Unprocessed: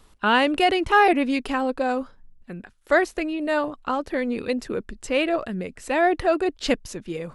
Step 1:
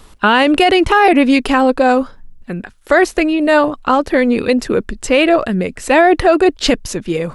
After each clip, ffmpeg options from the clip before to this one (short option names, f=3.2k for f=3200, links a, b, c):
-af "alimiter=level_in=13.5dB:limit=-1dB:release=50:level=0:latency=1,volume=-1dB"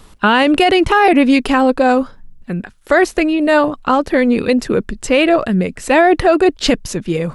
-af "equalizer=f=160:w=1.5:g=4.5,volume=-1dB"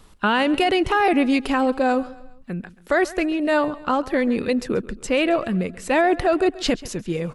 -af "aecho=1:1:135|270|405:0.112|0.0494|0.0217,volume=-7.5dB"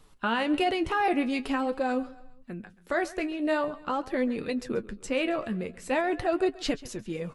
-af "flanger=delay=6.4:depth=7.7:regen=48:speed=0.45:shape=triangular,volume=-4dB"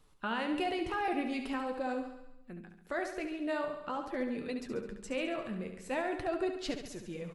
-af "aecho=1:1:70|140|210|280|350|420|490:0.398|0.223|0.125|0.0699|0.0392|0.0219|0.0123,volume=-8dB"